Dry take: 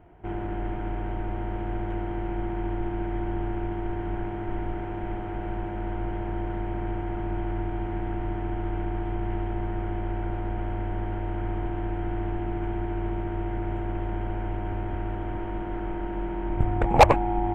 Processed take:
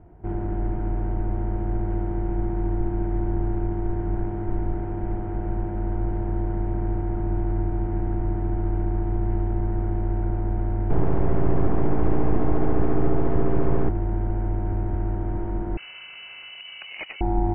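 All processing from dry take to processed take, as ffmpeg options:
-filter_complex "[0:a]asettb=1/sr,asplit=3[s0][s1][s2];[s0]atrim=end=10.904[s3];[s1]atrim=start=10.9:end=13.89,asetpts=PTS-STARTPTS,afade=t=in:d=0.004:c=qsin,afade=t=out:st=2.986:d=0.004:c=qsin,equalizer=f=420:t=o:w=0.76:g=3.5,acontrast=67,aeval=exprs='abs(val(0))':c=same[s4];[s2]atrim=start=13.886[s5];[s3][s4]acrossfade=d=0.004:c1=hsin:c2=qsin[s6];[s6][s5]acrossfade=d=0.004:c1=qsin:c2=hsin,asettb=1/sr,asplit=3[s7][s8][s9];[s7]atrim=end=15.774[s10];[s8]atrim=start=15.77:end=17.21,asetpts=PTS-STARTPTS,afade=t=in:d=0.004:c=qsin,afade=t=out:st=1.436:d=0.004:c=qsin,acompressor=threshold=0.0562:ratio=5:attack=3.2:release=140:knee=1:detection=peak,lowpass=f=2600:t=q:w=0.5098,lowpass=f=2600:t=q:w=0.6013,lowpass=f=2600:t=q:w=0.9,lowpass=f=2600:t=q:w=2.563,afreqshift=-3000[s11];[s9]atrim=start=17.206[s12];[s10][s11]acrossfade=d=0.004:c1=hsin:c2=qsin[s13];[s13][s12]acrossfade=d=0.004:c1=qsin:c2=hsin,lowpass=1800,lowshelf=f=410:g=10,volume=0.668"

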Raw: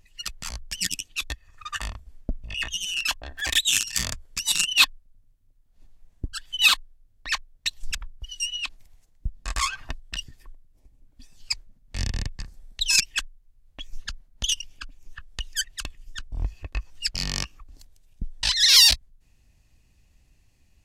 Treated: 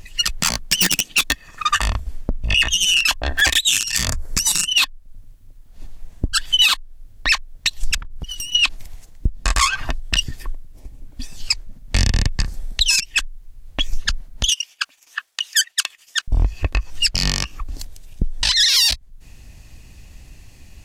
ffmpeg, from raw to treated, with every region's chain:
-filter_complex "[0:a]asettb=1/sr,asplit=3[s0][s1][s2];[s0]atrim=end=0.404[s3];[s1]atrim=start=0.4:end=1.71,asetpts=PTS-STARTPTS,afade=t=in:d=0.004:c=qsin,afade=t=out:st=1.306:d=0.004:c=qsin,lowshelf=f=120:t=q:w=1.5:g=-11,aeval=exprs='0.0708*(abs(mod(val(0)/0.0708+3,4)-2)-1)':c=same[s4];[s2]atrim=start=1.706[s5];[s3][s4]acrossfade=d=0.004:c1=hsin:c2=qsin[s6];[s6][s5]acrossfade=d=0.004:c1=qsin:c2=hsin,asettb=1/sr,asplit=3[s7][s8][s9];[s7]atrim=end=4.084[s10];[s8]atrim=start=4.08:end=4.68,asetpts=PTS-STARTPTS,afade=t=in:d=0.004:c=qsin,afade=t=out:st=0.596:d=0.004:c=qsin,equalizer=f=3100:t=o:w=0.9:g=-12,acontrast=75[s11];[s9]atrim=start=4.676[s12];[s10][s11]acrossfade=d=0.004:c1=hsin:c2=qsin[s13];[s13][s12]acrossfade=d=0.004:c1=qsin:c2=hsin,asettb=1/sr,asplit=3[s14][s15][s16];[s14]atrim=end=8.004[s17];[s15]atrim=start=8:end=8.55,asetpts=PTS-STARTPTS,afade=t=in:d=0.004:c=qsin,afade=t=out:st=0.546:d=0.004:c=qsin,aeval=exprs='clip(val(0),-1,0.00891)':c=same,acompressor=threshold=0.00708:ratio=8:attack=3.2:release=140:knee=1:detection=peak[s18];[s16]atrim=start=8.546[s19];[s17][s18]acrossfade=d=0.004:c1=hsin:c2=qsin[s20];[s20][s19]acrossfade=d=0.004:c1=qsin:c2=hsin,asettb=1/sr,asplit=3[s21][s22][s23];[s21]atrim=end=14.494[s24];[s22]atrim=start=14.49:end=16.28,asetpts=PTS-STARTPTS,afade=t=in:d=0.004:c=qsin,afade=t=out:st=1.786:d=0.004:c=qsin,agate=range=0.0224:threshold=0.00794:ratio=3:release=100:detection=peak,highpass=1100[s25];[s23]atrim=start=16.276[s26];[s24][s25]acrossfade=d=0.004:c1=hsin:c2=qsin[s27];[s27][s26]acrossfade=d=0.004:c1=qsin:c2=hsin,acompressor=threshold=0.0282:ratio=6,alimiter=level_in=13.3:limit=0.891:release=50:level=0:latency=1,volume=0.631"

